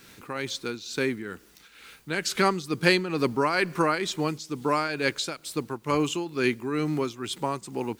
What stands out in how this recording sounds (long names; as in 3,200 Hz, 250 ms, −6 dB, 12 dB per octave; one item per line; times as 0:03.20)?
a quantiser's noise floor 10 bits, dither triangular
tremolo triangle 2.2 Hz, depth 70%